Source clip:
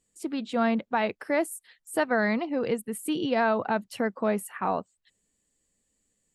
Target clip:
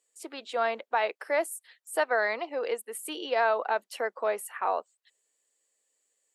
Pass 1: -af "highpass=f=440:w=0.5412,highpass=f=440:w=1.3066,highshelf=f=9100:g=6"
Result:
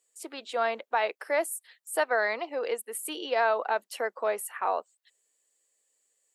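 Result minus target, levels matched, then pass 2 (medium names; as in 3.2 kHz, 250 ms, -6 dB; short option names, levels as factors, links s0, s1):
8 kHz band +3.0 dB
-af "highpass=f=440:w=0.5412,highpass=f=440:w=1.3066"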